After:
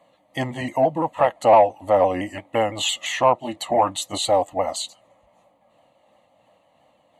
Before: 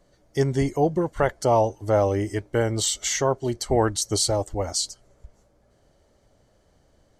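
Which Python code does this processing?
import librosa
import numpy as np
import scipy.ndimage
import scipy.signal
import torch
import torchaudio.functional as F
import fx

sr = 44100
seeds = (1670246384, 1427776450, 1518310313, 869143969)

p1 = fx.pitch_ramps(x, sr, semitones=-2.0, every_ms=170)
p2 = scipy.signal.sosfilt(scipy.signal.butter(2, 350.0, 'highpass', fs=sr, output='sos'), p1)
p3 = fx.high_shelf(p2, sr, hz=3900.0, db=-10.5)
p4 = fx.fixed_phaser(p3, sr, hz=1500.0, stages=6)
p5 = fx.fold_sine(p4, sr, drive_db=4, ceiling_db=-15.5)
p6 = p4 + (p5 * 10.0 ** (-10.0 / 20.0))
y = p6 * 10.0 ** (8.0 / 20.0)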